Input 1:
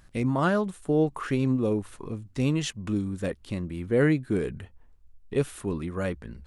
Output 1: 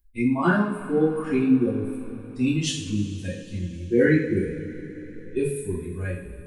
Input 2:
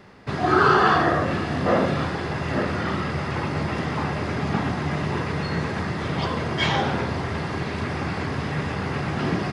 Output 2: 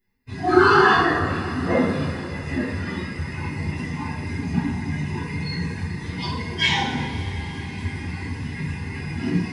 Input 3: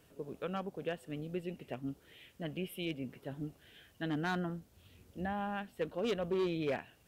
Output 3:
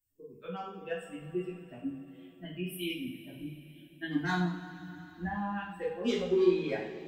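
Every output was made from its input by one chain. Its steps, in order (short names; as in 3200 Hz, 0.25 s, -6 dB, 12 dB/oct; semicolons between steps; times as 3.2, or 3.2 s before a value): per-bin expansion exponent 2; thirty-one-band EQ 125 Hz -7 dB, 630 Hz -11 dB, 1250 Hz -3 dB; two-slope reverb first 0.54 s, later 4.3 s, from -18 dB, DRR -8 dB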